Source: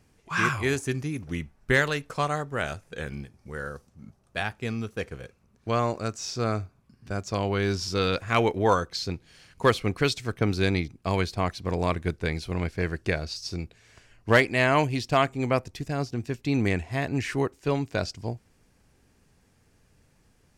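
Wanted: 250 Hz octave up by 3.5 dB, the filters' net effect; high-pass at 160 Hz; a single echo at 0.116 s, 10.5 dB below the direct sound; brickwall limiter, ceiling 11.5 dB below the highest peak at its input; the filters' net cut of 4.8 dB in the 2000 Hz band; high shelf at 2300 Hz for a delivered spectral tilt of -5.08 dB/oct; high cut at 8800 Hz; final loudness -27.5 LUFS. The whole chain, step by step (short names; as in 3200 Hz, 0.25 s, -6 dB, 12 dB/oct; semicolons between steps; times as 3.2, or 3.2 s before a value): HPF 160 Hz; LPF 8800 Hz; bell 250 Hz +5.5 dB; bell 2000 Hz -8 dB; high shelf 2300 Hz +3.5 dB; limiter -16.5 dBFS; echo 0.116 s -10.5 dB; gain +2.5 dB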